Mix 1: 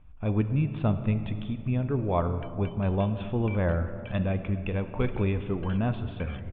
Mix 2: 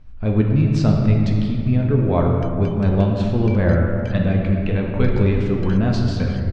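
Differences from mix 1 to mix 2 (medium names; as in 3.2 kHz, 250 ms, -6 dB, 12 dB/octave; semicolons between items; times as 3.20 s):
speech: send +11.0 dB; master: remove rippled Chebyshev low-pass 3.6 kHz, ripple 6 dB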